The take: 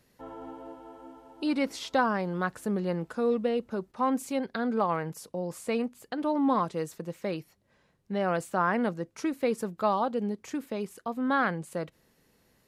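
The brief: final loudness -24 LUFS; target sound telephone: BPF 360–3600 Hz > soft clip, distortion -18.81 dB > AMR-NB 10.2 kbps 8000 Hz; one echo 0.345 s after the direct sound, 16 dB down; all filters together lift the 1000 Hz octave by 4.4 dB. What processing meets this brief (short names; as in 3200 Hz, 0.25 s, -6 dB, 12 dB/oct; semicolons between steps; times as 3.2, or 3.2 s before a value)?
BPF 360–3600 Hz; bell 1000 Hz +5.5 dB; echo 0.345 s -16 dB; soft clip -14.5 dBFS; gain +7 dB; AMR-NB 10.2 kbps 8000 Hz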